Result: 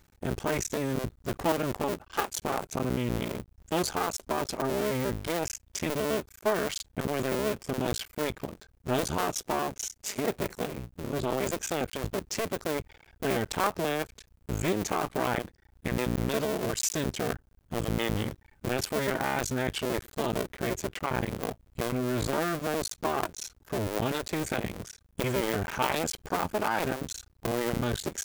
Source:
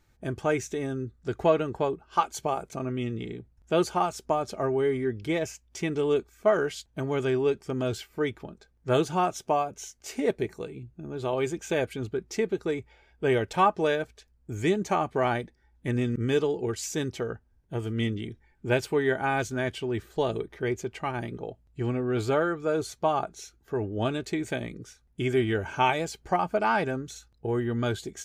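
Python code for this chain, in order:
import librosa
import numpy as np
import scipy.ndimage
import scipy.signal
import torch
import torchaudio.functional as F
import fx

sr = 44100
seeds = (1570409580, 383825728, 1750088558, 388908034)

p1 = fx.cycle_switch(x, sr, every=2, mode='muted')
p2 = fx.over_compress(p1, sr, threshold_db=-35.0, ratio=-1.0)
p3 = p1 + (p2 * librosa.db_to_amplitude(2.0))
p4 = fx.high_shelf(p3, sr, hz=11000.0, db=9.0)
y = p4 * librosa.db_to_amplitude(-4.0)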